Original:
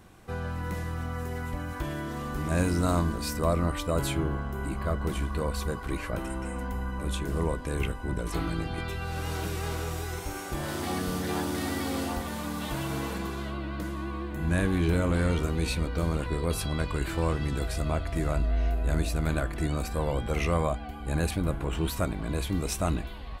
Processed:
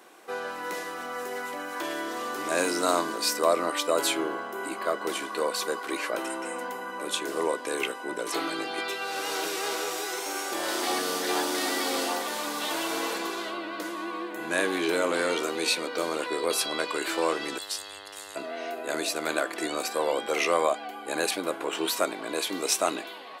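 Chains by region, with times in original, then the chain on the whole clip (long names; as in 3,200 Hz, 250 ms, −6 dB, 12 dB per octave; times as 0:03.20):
0:17.57–0:18.35: Chebyshev band-stop filter 110–2,800 Hz, order 5 + parametric band 77 Hz +9 dB 1.6 octaves + hum with harmonics 100 Hz, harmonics 21, −50 dBFS −2 dB per octave
whole clip: high-pass filter 340 Hz 24 dB per octave; dynamic equaliser 5,000 Hz, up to +5 dB, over −51 dBFS, Q 0.78; level +5 dB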